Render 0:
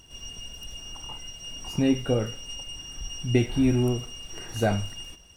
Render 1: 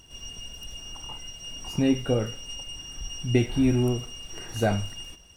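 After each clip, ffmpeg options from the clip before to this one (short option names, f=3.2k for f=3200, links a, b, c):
-af anull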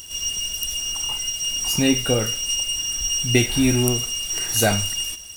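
-af "crystalizer=i=7.5:c=0,volume=2.5dB"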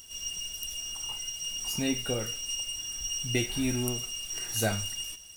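-af "flanger=delay=4.4:depth=4.7:regen=70:speed=0.53:shape=sinusoidal,volume=-6dB"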